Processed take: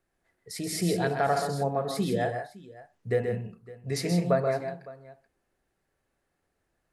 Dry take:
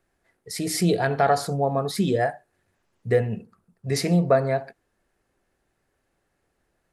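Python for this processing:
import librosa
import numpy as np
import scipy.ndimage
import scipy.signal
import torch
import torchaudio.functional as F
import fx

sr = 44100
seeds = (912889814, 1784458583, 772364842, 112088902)

y = fx.echo_multitap(x, sr, ms=(129, 162, 559), db=(-6.5, -9.0, -19.5))
y = F.gain(torch.from_numpy(y), -6.0).numpy()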